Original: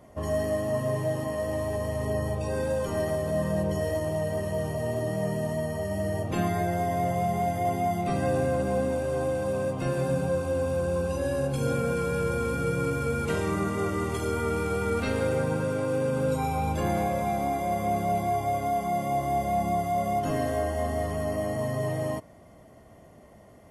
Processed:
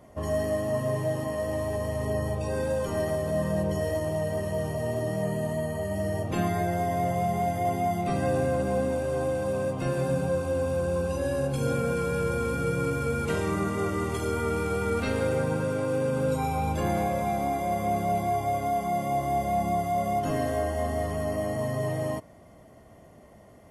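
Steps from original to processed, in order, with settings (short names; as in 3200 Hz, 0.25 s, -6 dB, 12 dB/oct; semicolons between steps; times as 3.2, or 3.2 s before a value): 5.22–5.96 notch 5500 Hz, Q 8.9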